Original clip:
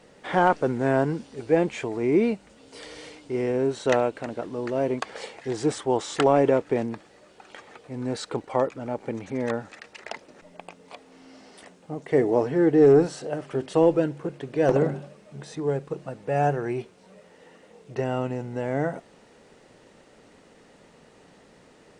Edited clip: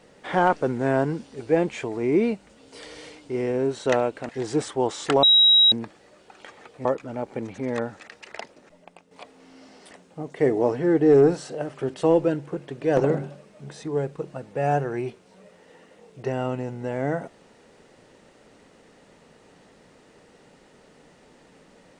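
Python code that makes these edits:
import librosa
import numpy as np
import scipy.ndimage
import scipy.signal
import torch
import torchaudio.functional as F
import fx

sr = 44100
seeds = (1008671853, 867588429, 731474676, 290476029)

y = fx.edit(x, sr, fx.cut(start_s=4.29, length_s=1.1),
    fx.bleep(start_s=6.33, length_s=0.49, hz=3840.0, db=-12.0),
    fx.cut(start_s=7.95, length_s=0.62),
    fx.fade_out_to(start_s=10.06, length_s=0.77, floor_db=-10.0), tone=tone)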